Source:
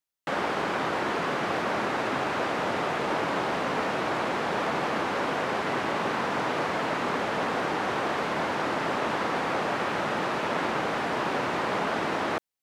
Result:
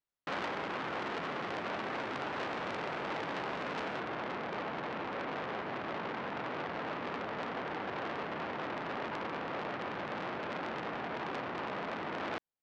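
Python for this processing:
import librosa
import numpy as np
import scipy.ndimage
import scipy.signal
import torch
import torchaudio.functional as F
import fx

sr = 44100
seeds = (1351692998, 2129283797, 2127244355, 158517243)

y = fx.rider(x, sr, range_db=10, speed_s=0.5)
y = fx.spacing_loss(y, sr, db_at_10k=fx.steps((0.0, 21.0), (3.99, 36.0)))
y = fx.transformer_sat(y, sr, knee_hz=2600.0)
y = y * 10.0 ** (-3.0 / 20.0)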